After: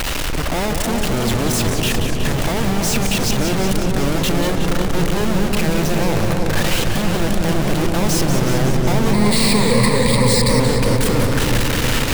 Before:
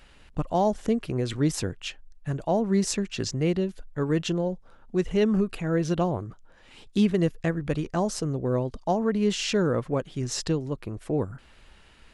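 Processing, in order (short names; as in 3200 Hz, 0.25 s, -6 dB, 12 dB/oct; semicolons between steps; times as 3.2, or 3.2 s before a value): infinite clipping; 9.13–10.6 ripple EQ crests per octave 0.95, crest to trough 17 dB; darkening echo 0.328 s, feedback 80%, low-pass 890 Hz, level -3.5 dB; warbling echo 0.184 s, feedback 73%, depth 162 cents, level -7.5 dB; gain +6 dB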